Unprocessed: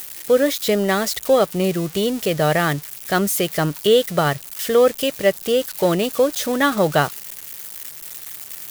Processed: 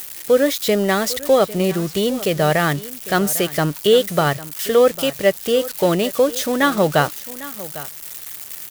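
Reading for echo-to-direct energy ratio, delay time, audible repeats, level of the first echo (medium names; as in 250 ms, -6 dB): -17.0 dB, 801 ms, 1, -17.0 dB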